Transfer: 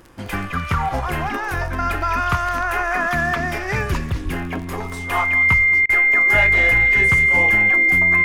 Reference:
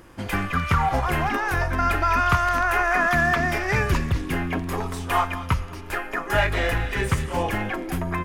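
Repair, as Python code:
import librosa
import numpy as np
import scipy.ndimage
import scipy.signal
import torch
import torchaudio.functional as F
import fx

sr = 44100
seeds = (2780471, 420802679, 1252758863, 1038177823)

y = fx.fix_declick_ar(x, sr, threshold=6.5)
y = fx.notch(y, sr, hz=2100.0, q=30.0)
y = fx.highpass(y, sr, hz=140.0, slope=24, at=(4.24, 4.36), fade=0.02)
y = fx.fix_interpolate(y, sr, at_s=(5.86,), length_ms=31.0)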